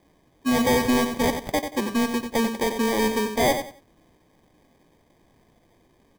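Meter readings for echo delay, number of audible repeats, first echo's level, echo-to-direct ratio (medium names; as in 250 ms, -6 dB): 91 ms, 3, -8.0 dB, -7.5 dB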